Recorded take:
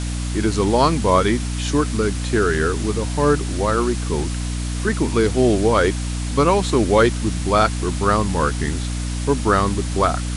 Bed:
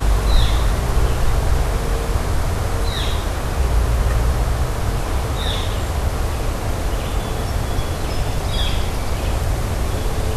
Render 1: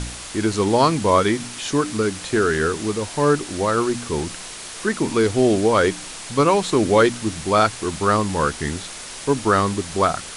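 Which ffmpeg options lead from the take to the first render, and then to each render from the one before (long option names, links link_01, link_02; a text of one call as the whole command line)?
ffmpeg -i in.wav -af "bandreject=frequency=60:width_type=h:width=4,bandreject=frequency=120:width_type=h:width=4,bandreject=frequency=180:width_type=h:width=4,bandreject=frequency=240:width_type=h:width=4,bandreject=frequency=300:width_type=h:width=4" out.wav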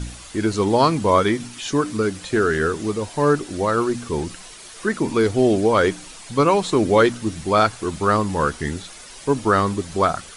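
ffmpeg -i in.wav -af "afftdn=noise_reduction=9:noise_floor=-35" out.wav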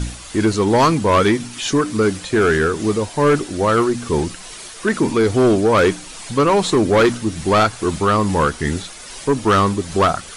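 ffmpeg -i in.wav -af "tremolo=f=2.4:d=0.29,aeval=exprs='0.596*(cos(1*acos(clip(val(0)/0.596,-1,1)))-cos(1*PI/2))+0.133*(cos(5*acos(clip(val(0)/0.596,-1,1)))-cos(5*PI/2))':channel_layout=same" out.wav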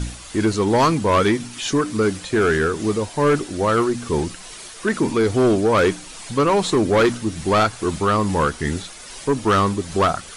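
ffmpeg -i in.wav -af "volume=-2.5dB" out.wav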